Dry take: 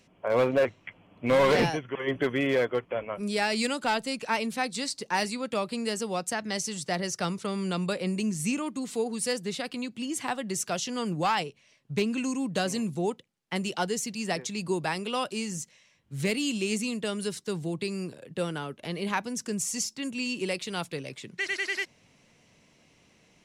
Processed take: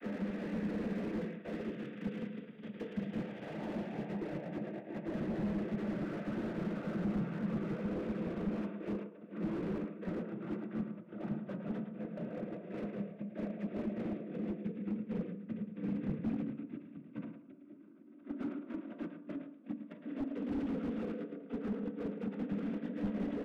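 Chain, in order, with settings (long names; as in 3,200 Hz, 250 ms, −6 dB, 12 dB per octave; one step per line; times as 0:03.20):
linear delta modulator 16 kbit/s, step −44 dBFS
treble cut that deepens with the level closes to 1,600 Hz, closed at −28.5 dBFS
high-pass filter 190 Hz 24 dB per octave
extreme stretch with random phases 8.3×, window 0.50 s, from 0:06.43
comb filter 7.4 ms, depth 48%
compressor whose output falls as the input rises −36 dBFS, ratio −1
noise gate −34 dBFS, range −23 dB
phaser with its sweep stopped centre 2,100 Hz, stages 4
cochlear-implant simulation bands 16
single-tap delay 110 ms −9 dB
on a send at −7 dB: convolution reverb RT60 0.70 s, pre-delay 3 ms
on the sum: slew-rate limiting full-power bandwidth 5.1 Hz
level +2.5 dB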